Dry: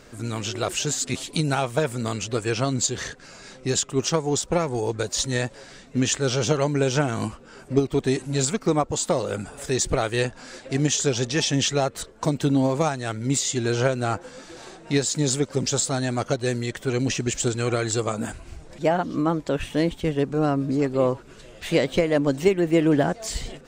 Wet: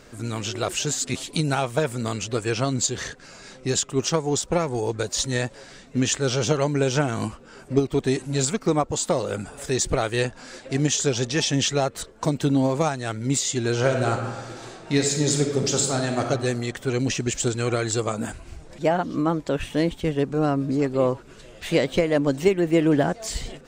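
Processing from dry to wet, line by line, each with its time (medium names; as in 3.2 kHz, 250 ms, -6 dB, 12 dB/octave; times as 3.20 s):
13.78–16.23 s: reverb throw, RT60 1.4 s, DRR 3 dB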